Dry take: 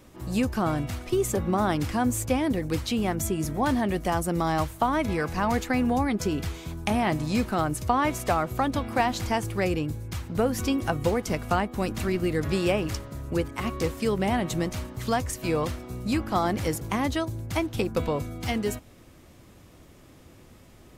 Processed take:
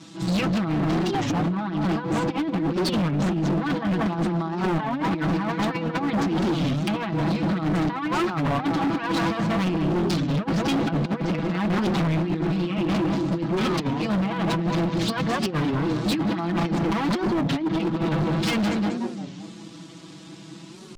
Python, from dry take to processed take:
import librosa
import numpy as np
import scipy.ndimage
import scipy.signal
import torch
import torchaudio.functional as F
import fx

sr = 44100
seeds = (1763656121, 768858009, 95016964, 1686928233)

p1 = fx.lower_of_two(x, sr, delay_ms=6.1)
p2 = scipy.signal.sosfilt(scipy.signal.butter(2, 150.0, 'highpass', fs=sr, output='sos'), p1)
p3 = fx.quant_dither(p2, sr, seeds[0], bits=6, dither='none')
p4 = p2 + (p3 * librosa.db_to_amplitude(-7.0))
p5 = fx.air_absorb(p4, sr, metres=96.0)
p6 = p5 + 0.58 * np.pad(p5, (int(6.1 * sr / 1000.0), 0))[:len(p5)]
p7 = p6 + fx.echo_tape(p6, sr, ms=187, feedback_pct=57, wet_db=-3.0, lp_hz=1000.0, drive_db=8.0, wow_cents=7, dry=0)
p8 = fx.env_lowpass_down(p7, sr, base_hz=2400.0, full_db=-21.0)
p9 = fx.over_compress(p8, sr, threshold_db=-24.0, ratio=-0.5)
p10 = fx.graphic_eq(p9, sr, hz=(250, 500, 2000, 4000, 8000), db=(8, -11, -4, 8, 8))
p11 = np.clip(p10, -10.0 ** (-25.5 / 20.0), 10.0 ** (-25.5 / 20.0))
p12 = fx.record_warp(p11, sr, rpm=33.33, depth_cents=250.0)
y = p12 * librosa.db_to_amplitude(5.0)